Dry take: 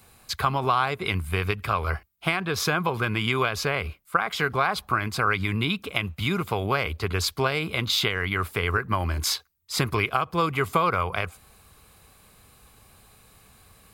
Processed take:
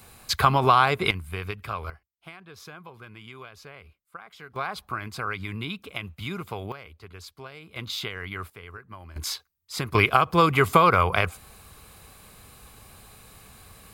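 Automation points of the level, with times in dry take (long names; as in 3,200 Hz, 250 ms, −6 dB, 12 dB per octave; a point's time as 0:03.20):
+4.5 dB
from 0:01.11 −7 dB
from 0:01.90 −19.5 dB
from 0:04.56 −7.5 dB
from 0:06.72 −18 dB
from 0:07.76 −8.5 dB
from 0:08.50 −18 dB
from 0:09.16 −5.5 dB
from 0:09.95 +5 dB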